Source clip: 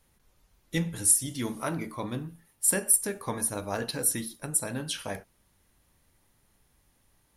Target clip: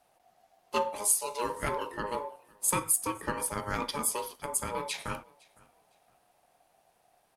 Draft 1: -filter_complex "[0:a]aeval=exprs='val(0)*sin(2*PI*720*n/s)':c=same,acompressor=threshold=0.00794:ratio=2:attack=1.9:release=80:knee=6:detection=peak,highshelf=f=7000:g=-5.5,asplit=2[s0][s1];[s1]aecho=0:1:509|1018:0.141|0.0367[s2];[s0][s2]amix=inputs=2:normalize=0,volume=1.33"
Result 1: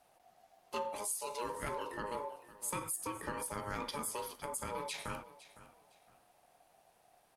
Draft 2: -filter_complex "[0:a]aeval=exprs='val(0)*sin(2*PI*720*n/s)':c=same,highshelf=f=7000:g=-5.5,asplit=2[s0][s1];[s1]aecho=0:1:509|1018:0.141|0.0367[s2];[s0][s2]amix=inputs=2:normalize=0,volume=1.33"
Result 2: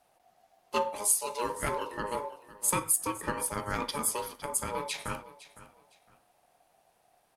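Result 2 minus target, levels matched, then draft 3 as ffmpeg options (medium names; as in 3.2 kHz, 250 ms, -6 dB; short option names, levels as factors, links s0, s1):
echo-to-direct +9 dB
-filter_complex "[0:a]aeval=exprs='val(0)*sin(2*PI*720*n/s)':c=same,highshelf=f=7000:g=-5.5,asplit=2[s0][s1];[s1]aecho=0:1:509|1018:0.0501|0.013[s2];[s0][s2]amix=inputs=2:normalize=0,volume=1.33"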